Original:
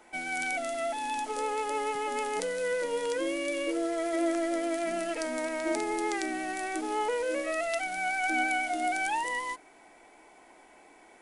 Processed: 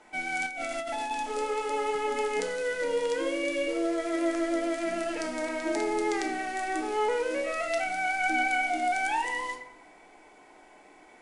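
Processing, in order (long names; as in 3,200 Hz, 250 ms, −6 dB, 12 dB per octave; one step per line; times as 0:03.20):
on a send at −4 dB: convolution reverb RT60 0.85 s, pre-delay 7 ms
0:00.46–0:01.11: on the sum: compressor whose output falls as the input rises −34 dBFS, ratio −1
low-pass filter 8,300 Hz 12 dB per octave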